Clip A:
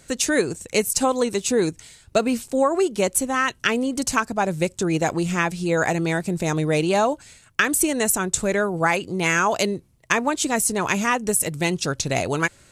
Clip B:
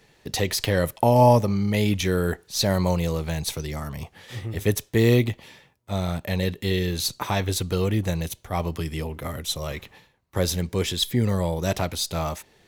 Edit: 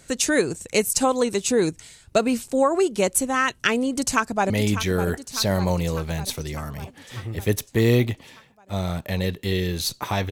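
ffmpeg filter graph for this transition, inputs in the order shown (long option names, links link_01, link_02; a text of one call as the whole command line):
ffmpeg -i cue0.wav -i cue1.wav -filter_complex "[0:a]apad=whole_dur=10.31,atrim=end=10.31,atrim=end=4.502[link_01];[1:a]atrim=start=1.688:end=7.5[link_02];[link_01][link_02]acrossfade=duration=0.004:curve1=hsin:curve2=hsin,asplit=2[link_03][link_04];[link_04]afade=type=in:start_time=3.87:duration=0.01,afade=type=out:start_time=4.5:duration=0.01,aecho=0:1:600|1200|1800|2400|3000|3600|4200|4800:0.298538|0.19405|0.126132|0.0819861|0.0532909|0.0346391|0.0225154|0.014635[link_05];[link_03][link_05]amix=inputs=2:normalize=0" out.wav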